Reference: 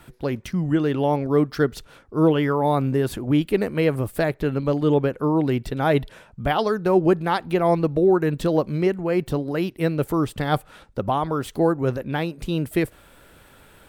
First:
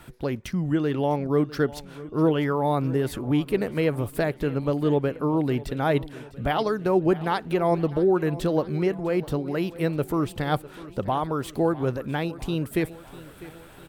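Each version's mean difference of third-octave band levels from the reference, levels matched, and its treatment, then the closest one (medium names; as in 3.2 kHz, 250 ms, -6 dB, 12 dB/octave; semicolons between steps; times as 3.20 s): 2.5 dB: in parallel at -1.5 dB: compression, threshold -32 dBFS, peak gain reduction 18 dB; on the sum: feedback delay 651 ms, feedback 55%, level -18 dB; trim -4.5 dB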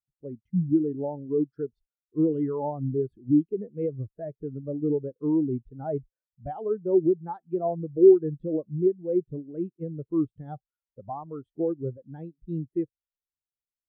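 14.0 dB: peak limiter -12.5 dBFS, peak gain reduction 6 dB; spectral contrast expander 2.5:1; trim +5.5 dB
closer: first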